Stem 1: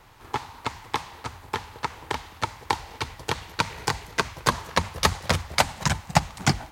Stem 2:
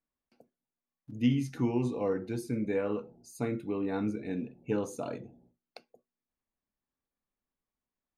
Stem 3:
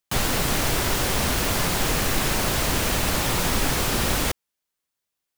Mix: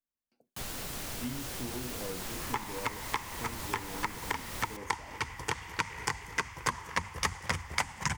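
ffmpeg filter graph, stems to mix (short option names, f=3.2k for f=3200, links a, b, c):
-filter_complex "[0:a]equalizer=f=630:t=o:w=0.33:g=-8,equalizer=f=1k:t=o:w=0.33:g=5,equalizer=f=2k:t=o:w=0.33:g=8,equalizer=f=4k:t=o:w=0.33:g=-11,equalizer=f=12.5k:t=o:w=0.33:g=-9,adelay=2200,volume=1.5dB[a];[1:a]volume=-9dB[b];[2:a]adelay=450,volume=-17dB[c];[a][b][c]amix=inputs=3:normalize=0,highshelf=f=4.2k:g=5,acompressor=threshold=-34dB:ratio=2.5"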